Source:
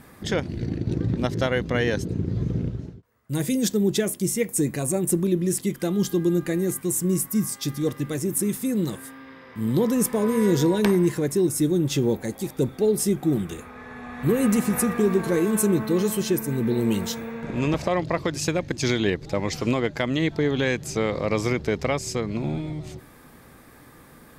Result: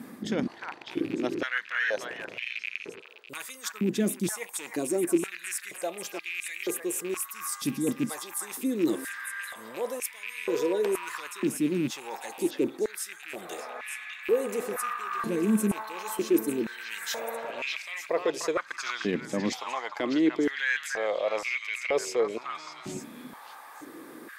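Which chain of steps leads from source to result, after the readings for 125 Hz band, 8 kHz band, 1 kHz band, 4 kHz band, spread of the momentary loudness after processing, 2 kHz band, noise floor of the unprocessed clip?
−16.0 dB, −6.5 dB, −2.0 dB, −4.5 dB, 12 LU, +0.5 dB, −49 dBFS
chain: loose part that buzzes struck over −23 dBFS, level −22 dBFS
reversed playback
downward compressor 6 to 1, threshold −29 dBFS, peak gain reduction 12.5 dB
reversed playback
echo through a band-pass that steps 301 ms, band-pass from 1,300 Hz, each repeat 1.4 octaves, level −0.5 dB
high-pass on a step sequencer 2.1 Hz 230–2,300 Hz

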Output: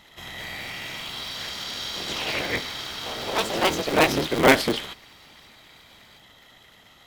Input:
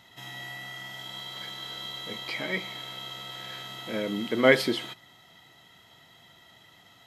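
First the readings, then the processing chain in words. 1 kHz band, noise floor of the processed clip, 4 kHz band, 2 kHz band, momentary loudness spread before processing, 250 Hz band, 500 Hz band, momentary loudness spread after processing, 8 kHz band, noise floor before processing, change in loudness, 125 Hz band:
+11.0 dB, −53 dBFS, +6.0 dB, +5.0 dB, 16 LU, +4.5 dB, +4.0 dB, 15 LU, +12.5 dB, −57 dBFS, +5.5 dB, +6.5 dB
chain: sub-harmonics by changed cycles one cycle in 3, inverted
delay with pitch and tempo change per echo 240 ms, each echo +3 semitones, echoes 3
level +3 dB

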